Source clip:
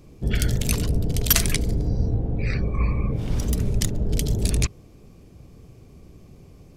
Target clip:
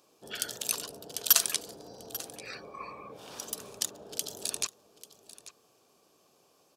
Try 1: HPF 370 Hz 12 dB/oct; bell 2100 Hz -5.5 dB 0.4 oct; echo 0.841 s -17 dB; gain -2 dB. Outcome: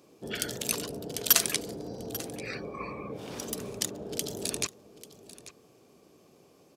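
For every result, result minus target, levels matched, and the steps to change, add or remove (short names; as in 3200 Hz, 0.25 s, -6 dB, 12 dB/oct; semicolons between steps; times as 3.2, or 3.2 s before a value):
500 Hz band +8.0 dB; 2000 Hz band +3.5 dB
change: HPF 790 Hz 12 dB/oct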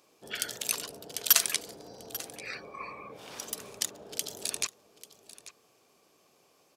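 2000 Hz band +3.5 dB
change: bell 2100 Hz -14.5 dB 0.4 oct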